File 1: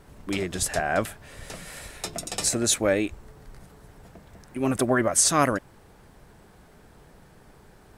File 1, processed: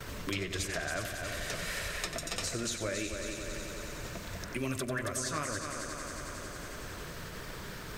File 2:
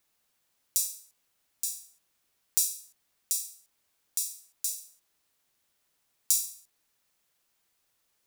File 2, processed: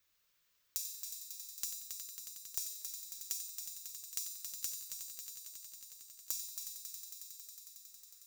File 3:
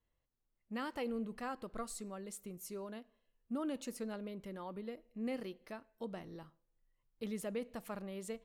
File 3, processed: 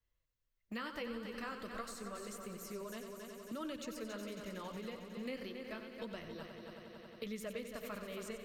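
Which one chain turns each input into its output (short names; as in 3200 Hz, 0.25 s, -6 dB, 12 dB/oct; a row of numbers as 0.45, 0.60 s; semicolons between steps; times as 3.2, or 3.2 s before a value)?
bell 240 Hz -7.5 dB 2.5 oct; notch 7700 Hz, Q 19; gate -56 dBFS, range -24 dB; compressor 2.5:1, threshold -37 dBFS; flange 1.6 Hz, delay 1.1 ms, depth 7 ms, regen -41%; thirty-one-band EQ 100 Hz +6 dB, 800 Hz -12 dB, 10000 Hz -11 dB; multi-head echo 91 ms, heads first and third, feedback 65%, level -10 dB; three-band squash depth 70%; gain +6.5 dB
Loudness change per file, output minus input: -12.0, -12.0, -1.5 LU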